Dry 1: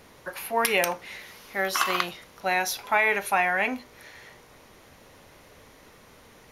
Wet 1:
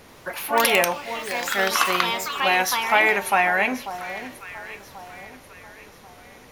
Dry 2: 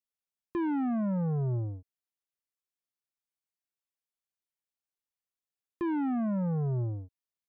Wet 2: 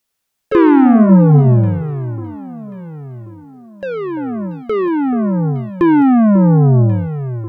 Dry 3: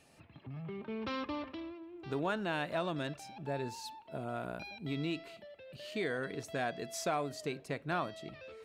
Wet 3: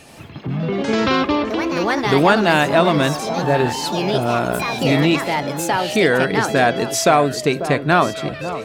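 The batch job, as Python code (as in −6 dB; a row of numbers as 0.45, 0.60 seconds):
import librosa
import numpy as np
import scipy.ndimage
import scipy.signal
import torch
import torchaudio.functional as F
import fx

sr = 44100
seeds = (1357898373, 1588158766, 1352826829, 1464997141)

y = fx.echo_alternate(x, sr, ms=543, hz=1200.0, feedback_pct=60, wet_db=-11.5)
y = fx.echo_pitch(y, sr, ms=84, semitones=4, count=2, db_per_echo=-6.0)
y = librosa.util.normalize(y) * 10.0 ** (-1.5 / 20.0)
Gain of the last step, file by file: +4.0, +20.0, +20.0 decibels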